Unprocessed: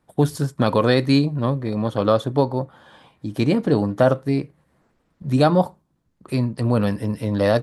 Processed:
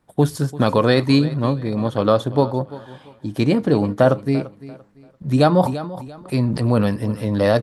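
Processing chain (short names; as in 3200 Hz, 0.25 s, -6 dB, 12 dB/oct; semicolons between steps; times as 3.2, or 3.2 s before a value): on a send: feedback echo 0.342 s, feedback 28%, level -17.5 dB; 5.61–6.87 on the sum: sustainer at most 39 dB/s; gain +1.5 dB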